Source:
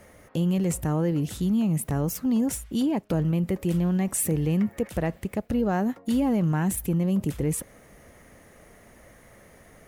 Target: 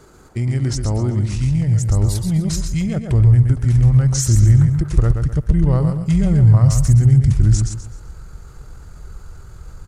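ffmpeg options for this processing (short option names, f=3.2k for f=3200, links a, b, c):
-af "asubboost=boost=10.5:cutoff=120,aecho=1:1:127|254|381|508:0.501|0.165|0.0546|0.018,asetrate=31183,aresample=44100,atempo=1.41421,volume=4.5dB"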